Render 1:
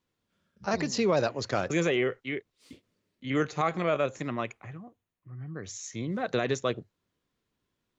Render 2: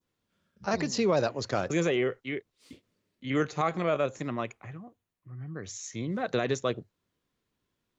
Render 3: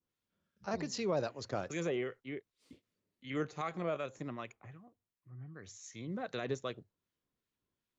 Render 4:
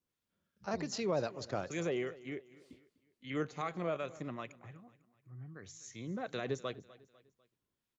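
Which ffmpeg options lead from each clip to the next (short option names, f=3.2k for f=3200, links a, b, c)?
-af "adynamicequalizer=threshold=0.00562:dfrequency=2200:dqfactor=0.95:tfrequency=2200:tqfactor=0.95:attack=5:release=100:ratio=0.375:range=1.5:mode=cutabove:tftype=bell"
-filter_complex "[0:a]acrossover=split=1200[a][b];[a]aeval=exprs='val(0)*(1-0.5/2+0.5/2*cos(2*PI*2.6*n/s))':c=same[c];[b]aeval=exprs='val(0)*(1-0.5/2-0.5/2*cos(2*PI*2.6*n/s))':c=same[d];[c][d]amix=inputs=2:normalize=0,volume=-7dB"
-af "aecho=1:1:249|498|747:0.106|0.0455|0.0196"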